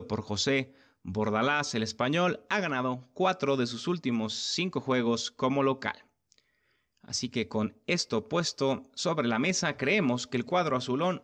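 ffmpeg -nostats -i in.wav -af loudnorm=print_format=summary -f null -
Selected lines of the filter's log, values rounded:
Input Integrated:    -29.2 LUFS
Input True Peak:     -12.3 dBTP
Input LRA:             3.3 LU
Input Threshold:     -39.5 LUFS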